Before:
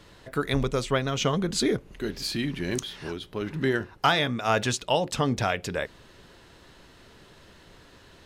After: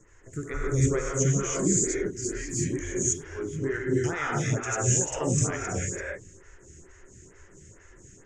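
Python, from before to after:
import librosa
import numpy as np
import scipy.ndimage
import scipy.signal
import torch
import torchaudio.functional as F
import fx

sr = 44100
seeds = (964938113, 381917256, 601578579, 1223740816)

y = fx.curve_eq(x, sr, hz=(120.0, 210.0, 390.0, 660.0, 1300.0, 2000.0, 4100.0, 6900.0, 11000.0), db=(0, -10, -5, -18, -11, -6, -29, 12, -25))
y = fx.rev_gated(y, sr, seeds[0], gate_ms=350, shape='rising', drr_db=-4.5)
y = fx.stagger_phaser(y, sr, hz=2.2)
y = y * 10.0 ** (3.5 / 20.0)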